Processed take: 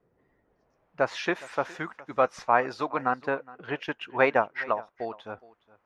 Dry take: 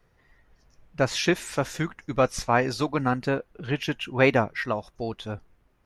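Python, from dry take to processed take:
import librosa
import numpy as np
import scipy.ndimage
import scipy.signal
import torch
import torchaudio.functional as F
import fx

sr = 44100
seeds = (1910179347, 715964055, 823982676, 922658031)

y = fx.filter_sweep_bandpass(x, sr, from_hz=340.0, to_hz=1000.0, start_s=0.38, end_s=1.06, q=0.95)
y = fx.transient(y, sr, attack_db=2, sustain_db=-5, at=(3.13, 5.24), fade=0.02)
y = y + 10.0 ** (-21.0 / 20.0) * np.pad(y, (int(415 * sr / 1000.0), 0))[:len(y)]
y = y * librosa.db_to_amplitude(2.0)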